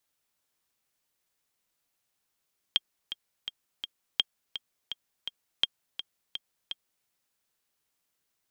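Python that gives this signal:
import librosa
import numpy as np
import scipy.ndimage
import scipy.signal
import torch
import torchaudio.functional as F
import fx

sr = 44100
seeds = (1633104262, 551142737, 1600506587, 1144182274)

y = fx.click_track(sr, bpm=167, beats=4, bars=3, hz=3220.0, accent_db=11.5, level_db=-9.5)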